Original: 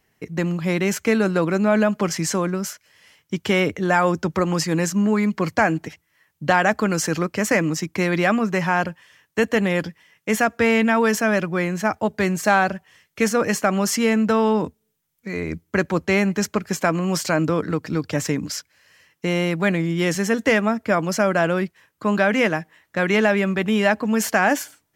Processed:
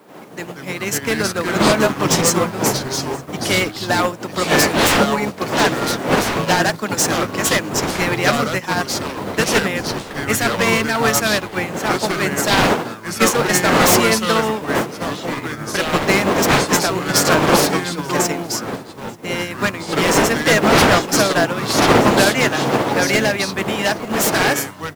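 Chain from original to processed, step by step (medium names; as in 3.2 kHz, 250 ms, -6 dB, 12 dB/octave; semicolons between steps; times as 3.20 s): wind noise 510 Hz -20 dBFS; high-pass 160 Hz 24 dB/octave; tilt EQ +2.5 dB/octave; wavefolder -13.5 dBFS; in parallel at -8 dB: word length cut 6-bit, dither triangular; on the sum: ever faster or slower copies 86 ms, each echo -4 st, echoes 3; on a send: delay 887 ms -16 dB; on the sum: upward expansion 2.5:1, over -28 dBFS; trim +4 dB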